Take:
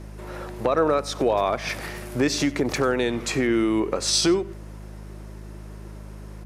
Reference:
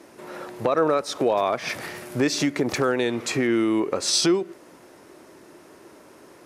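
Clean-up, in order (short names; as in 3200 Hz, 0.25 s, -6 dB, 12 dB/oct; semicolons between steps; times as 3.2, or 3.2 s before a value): de-hum 52.1 Hz, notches 4; inverse comb 92 ms -20.5 dB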